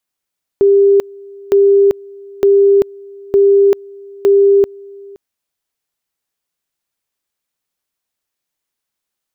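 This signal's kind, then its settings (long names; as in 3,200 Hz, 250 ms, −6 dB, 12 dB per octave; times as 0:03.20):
tone at two levels in turn 398 Hz −5.5 dBFS, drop 25.5 dB, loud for 0.39 s, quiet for 0.52 s, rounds 5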